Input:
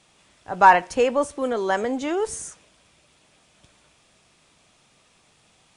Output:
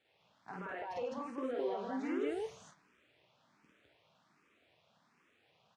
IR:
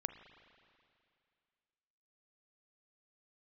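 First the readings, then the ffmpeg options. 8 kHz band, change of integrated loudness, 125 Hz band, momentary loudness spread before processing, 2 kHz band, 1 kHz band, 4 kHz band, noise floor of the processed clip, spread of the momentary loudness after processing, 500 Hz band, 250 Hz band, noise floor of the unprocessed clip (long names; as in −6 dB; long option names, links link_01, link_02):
−27.5 dB, −18.5 dB, −14.5 dB, 18 LU, −22.5 dB, −25.0 dB, −18.5 dB, −73 dBFS, 10 LU, −15.0 dB, −11.0 dB, −61 dBFS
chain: -filter_complex "[0:a]asplit=2[link_01][link_02];[link_02]adelay=27,volume=-12.5dB[link_03];[link_01][link_03]amix=inputs=2:normalize=0,acrusher=bits=7:dc=4:mix=0:aa=0.000001,lowpass=2700,acompressor=threshold=-23dB:ratio=6,highpass=130,alimiter=limit=-24dB:level=0:latency=1:release=227,asplit=2[link_04][link_05];[link_05]aecho=0:1:49.56|148.7|207:1|0.251|1[link_06];[link_04][link_06]amix=inputs=2:normalize=0,asplit=2[link_07][link_08];[link_08]afreqshift=1.3[link_09];[link_07][link_09]amix=inputs=2:normalize=1,volume=-7dB"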